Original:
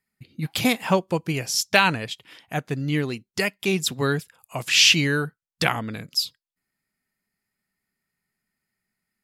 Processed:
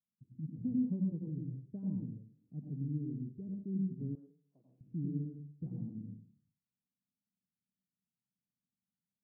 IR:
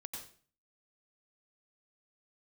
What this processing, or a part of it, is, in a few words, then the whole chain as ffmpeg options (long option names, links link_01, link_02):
next room: -filter_complex "[0:a]lowpass=frequency=260:width=0.5412,lowpass=frequency=260:width=1.3066[link_01];[1:a]atrim=start_sample=2205[link_02];[link_01][link_02]afir=irnorm=-1:irlink=0,highpass=100,asettb=1/sr,asplit=3[link_03][link_04][link_05];[link_03]atrim=end=4.154[link_06];[link_04]atrim=start=4.15:end=4.81,asetpts=PTS-STARTPTS,afade=type=in:duration=0.004:curve=qsin,afade=type=out:start_time=0.656:duration=0.004:curve=qsin,highpass=600[link_07];[link_05]atrim=start=4.806[link_08];[link_06][link_07]acrossfade=duration=0.004:curve1=hsin:curve2=qsin[link_09];[link_09][link_08]acrossfade=duration=0.004:curve1=qsin:curve2=hsin,volume=-6dB"